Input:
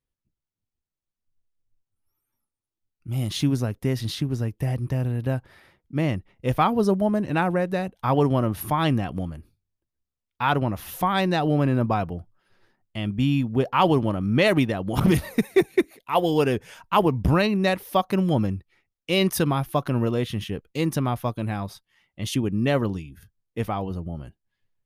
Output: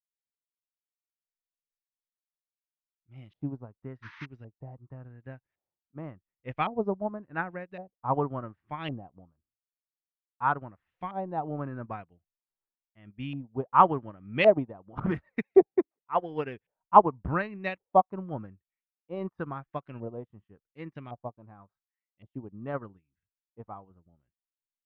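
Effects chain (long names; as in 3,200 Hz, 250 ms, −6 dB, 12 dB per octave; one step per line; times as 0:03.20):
sound drawn into the spectrogram noise, 0:04.02–0:04.26, 860–6,400 Hz −27 dBFS
auto-filter low-pass saw up 0.9 Hz 650–2,700 Hz
expander for the loud parts 2.5 to 1, over −36 dBFS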